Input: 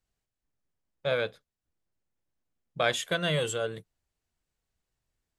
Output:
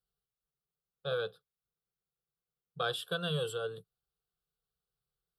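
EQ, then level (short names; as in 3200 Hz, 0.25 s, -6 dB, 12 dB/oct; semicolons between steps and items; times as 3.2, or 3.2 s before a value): HPF 50 Hz; fixed phaser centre 410 Hz, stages 8; fixed phaser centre 1400 Hz, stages 8; 0.0 dB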